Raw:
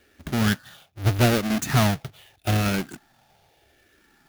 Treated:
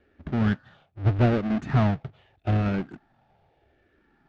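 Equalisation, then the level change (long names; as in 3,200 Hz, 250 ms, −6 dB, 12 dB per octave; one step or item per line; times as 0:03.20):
head-to-tape spacing loss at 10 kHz 41 dB
0.0 dB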